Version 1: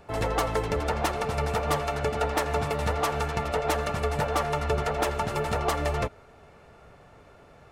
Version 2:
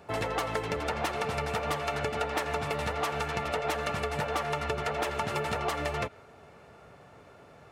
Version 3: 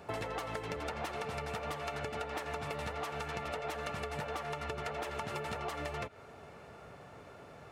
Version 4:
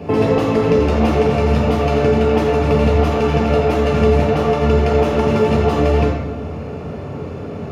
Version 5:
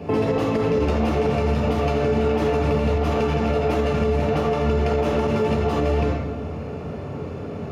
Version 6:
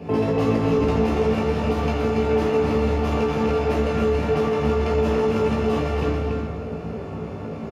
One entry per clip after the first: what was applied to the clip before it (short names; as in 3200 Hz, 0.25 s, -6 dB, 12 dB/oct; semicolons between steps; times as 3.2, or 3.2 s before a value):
compressor, threshold -28 dBFS, peak gain reduction 8 dB; dynamic EQ 2500 Hz, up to +5 dB, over -48 dBFS, Q 0.73; HPF 88 Hz 12 dB/oct
compressor 6:1, threshold -37 dBFS, peak gain reduction 11 dB; gain +1 dB
reverb RT60 1.1 s, pre-delay 3 ms, DRR -1.5 dB; gain +2 dB
limiter -9 dBFS, peak gain reduction 7.5 dB; gain -3.5 dB
doubler 18 ms -4 dB; echo 0.283 s -4.5 dB; gain -3 dB